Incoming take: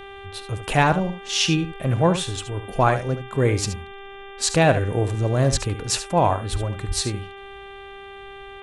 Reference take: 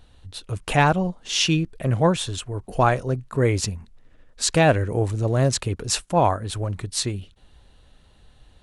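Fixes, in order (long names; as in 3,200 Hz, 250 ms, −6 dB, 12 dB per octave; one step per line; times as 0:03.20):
hum removal 395.1 Hz, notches 9
0:05.51–0:05.63: high-pass filter 140 Hz 24 dB per octave
0:06.51–0:06.63: high-pass filter 140 Hz 24 dB per octave
0:06.87–0:06.99: high-pass filter 140 Hz 24 dB per octave
echo removal 73 ms −11 dB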